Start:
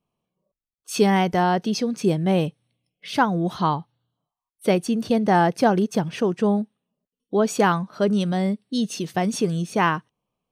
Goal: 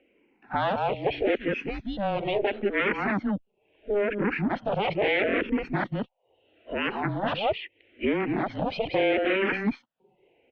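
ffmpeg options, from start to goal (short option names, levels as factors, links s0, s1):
-filter_complex "[0:a]areverse,asplit=2[s0][s1];[s1]aecho=0:1:184:0.376[s2];[s0][s2]amix=inputs=2:normalize=0,aeval=exprs='0.562*sin(PI/2*5.62*val(0)/0.562)':c=same,equalizer=f=1300:t=o:w=0.75:g=-12.5,highpass=f=470:t=q:w=0.5412,highpass=f=470:t=q:w=1.307,lowpass=f=2900:t=q:w=0.5176,lowpass=f=2900:t=q:w=0.7071,lowpass=f=2900:t=q:w=1.932,afreqshift=-200,acompressor=threshold=0.02:ratio=2.5,asplit=2[s3][s4];[s4]afreqshift=-0.76[s5];[s3][s5]amix=inputs=2:normalize=1,volume=2.11"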